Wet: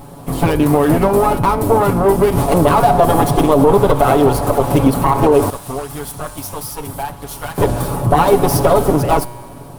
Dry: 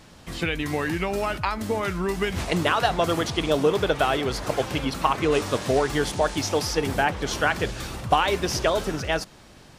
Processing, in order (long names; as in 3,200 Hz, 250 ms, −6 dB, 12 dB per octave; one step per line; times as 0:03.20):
lower of the sound and its delayed copy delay 7.1 ms
flat-topped bell 3,300 Hz −16 dB 2.6 octaves
tuned comb filter 120 Hz, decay 1.7 s, mix 60%
0:05.50–0:07.58: guitar amp tone stack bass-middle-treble 5-5-5
boost into a limiter +26 dB
level −1 dB